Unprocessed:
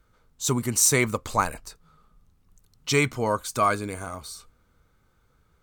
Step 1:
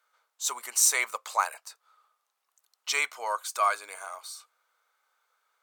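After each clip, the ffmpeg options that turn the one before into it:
ffmpeg -i in.wav -af "highpass=frequency=680:width=0.5412,highpass=frequency=680:width=1.3066,volume=-2dB" out.wav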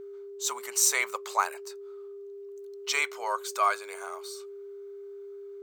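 ffmpeg -i in.wav -af "equalizer=frequency=10000:width=2.8:gain=-7,aeval=exprs='val(0)+0.01*sin(2*PI*400*n/s)':channel_layout=same" out.wav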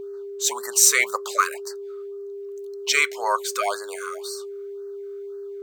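ffmpeg -i in.wav -af "afftfilt=real='re*(1-between(b*sr/1024,700*pow(2900/700,0.5+0.5*sin(2*PI*1.9*pts/sr))/1.41,700*pow(2900/700,0.5+0.5*sin(2*PI*1.9*pts/sr))*1.41))':imag='im*(1-between(b*sr/1024,700*pow(2900/700,0.5+0.5*sin(2*PI*1.9*pts/sr))/1.41,700*pow(2900/700,0.5+0.5*sin(2*PI*1.9*pts/sr))*1.41))':win_size=1024:overlap=0.75,volume=8dB" out.wav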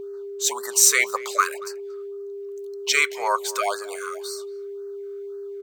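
ffmpeg -i in.wav -filter_complex "[0:a]asplit=2[link_01][link_02];[link_02]adelay=230,highpass=300,lowpass=3400,asoftclip=type=hard:threshold=-12.5dB,volume=-20dB[link_03];[link_01][link_03]amix=inputs=2:normalize=0" out.wav

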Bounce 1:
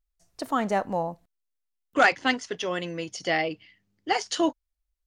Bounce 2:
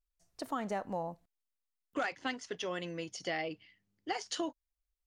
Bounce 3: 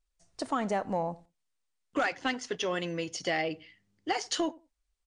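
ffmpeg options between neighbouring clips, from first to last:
ffmpeg -i in.wav -af "acompressor=threshold=-25dB:ratio=5,volume=-7dB" out.wav
ffmpeg -i in.wav -filter_complex "[0:a]asoftclip=type=tanh:threshold=-23.5dB,asplit=2[link_01][link_02];[link_02]adelay=88,lowpass=frequency=1100:poles=1,volume=-20.5dB,asplit=2[link_03][link_04];[link_04]adelay=88,lowpass=frequency=1100:poles=1,volume=0.19[link_05];[link_01][link_03][link_05]amix=inputs=3:normalize=0,volume=7dB" -ar 22050 -c:a libmp3lame -b:a 64k out.mp3

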